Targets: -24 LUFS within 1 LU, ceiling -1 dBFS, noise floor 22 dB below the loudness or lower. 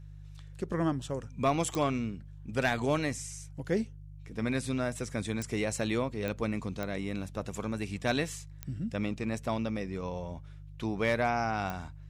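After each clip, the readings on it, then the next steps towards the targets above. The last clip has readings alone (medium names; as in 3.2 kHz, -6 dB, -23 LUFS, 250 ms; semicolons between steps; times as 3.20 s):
clicks found 6; hum 50 Hz; highest harmonic 150 Hz; hum level -45 dBFS; loudness -33.0 LUFS; peak level -17.5 dBFS; loudness target -24.0 LUFS
-> de-click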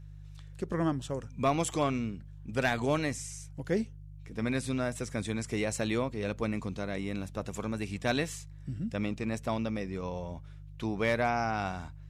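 clicks found 0; hum 50 Hz; highest harmonic 150 Hz; hum level -45 dBFS
-> de-hum 50 Hz, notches 3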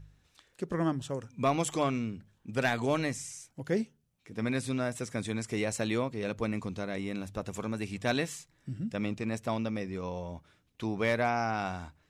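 hum not found; loudness -33.0 LUFS; peak level -17.5 dBFS; loudness target -24.0 LUFS
-> trim +9 dB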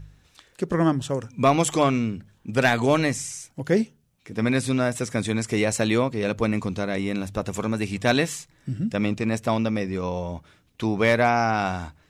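loudness -24.0 LUFS; peak level -8.5 dBFS; noise floor -62 dBFS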